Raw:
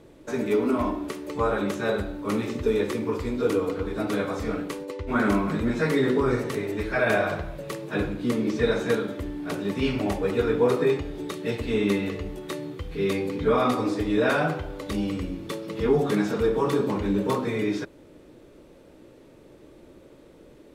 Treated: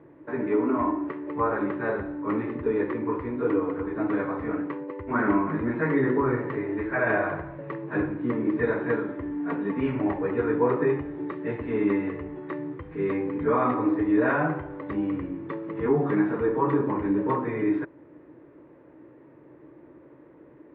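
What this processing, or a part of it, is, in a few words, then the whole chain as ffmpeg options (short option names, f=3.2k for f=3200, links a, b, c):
bass cabinet: -filter_complex "[0:a]highpass=89,equalizer=f=140:t=q:w=4:g=6,equalizer=f=200:t=q:w=4:g=-5,equalizer=f=310:t=q:w=4:g=8,equalizer=f=990:t=q:w=4:g=8,equalizer=f=1.8k:t=q:w=4:g=6,lowpass=f=2.1k:w=0.5412,lowpass=f=2.1k:w=1.3066,asettb=1/sr,asplit=3[a][b][c];[a]atrim=end=9.314[d];[b]atrim=start=9.31:end=9.81,asetpts=PTS-STARTPTS,afade=t=in:d=0.004:c=qsin,afade=t=out:st=0.496:d=0.004:c=qsin,aecho=1:1:4.3:0.65,atrim=end_sample=22050[e];[c]atrim=start=9.806[f];[d][e]acrossfade=d=0.004:c1=hsin:c2=qsin[g];[g][f]acrossfade=d=0.004:c1=qsin:c2=hsin,volume=-3.5dB"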